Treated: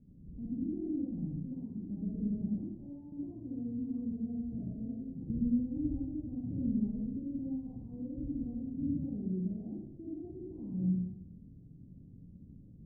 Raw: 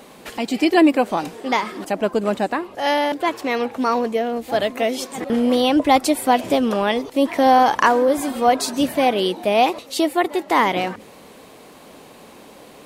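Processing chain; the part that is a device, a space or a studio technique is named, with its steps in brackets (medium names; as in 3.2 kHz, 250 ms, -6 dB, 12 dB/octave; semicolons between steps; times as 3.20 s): club heard from the street (peak limiter -13.5 dBFS, peak gain reduction 11.5 dB; low-pass 160 Hz 24 dB/octave; reverberation RT60 0.80 s, pre-delay 46 ms, DRR -6 dB)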